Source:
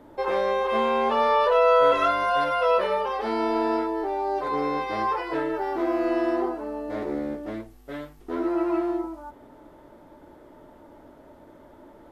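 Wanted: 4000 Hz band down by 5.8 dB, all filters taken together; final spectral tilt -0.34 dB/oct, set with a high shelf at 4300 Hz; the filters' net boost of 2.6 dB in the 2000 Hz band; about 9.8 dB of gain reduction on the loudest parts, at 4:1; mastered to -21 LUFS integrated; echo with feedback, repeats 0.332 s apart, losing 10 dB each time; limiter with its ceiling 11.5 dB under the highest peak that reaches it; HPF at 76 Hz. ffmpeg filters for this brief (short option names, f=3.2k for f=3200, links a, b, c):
-af "highpass=76,equalizer=f=2k:t=o:g=6.5,equalizer=f=4k:t=o:g=-8,highshelf=f=4.3k:g=-7,acompressor=threshold=-26dB:ratio=4,alimiter=level_in=4.5dB:limit=-24dB:level=0:latency=1,volume=-4.5dB,aecho=1:1:332|664|996|1328:0.316|0.101|0.0324|0.0104,volume=15dB"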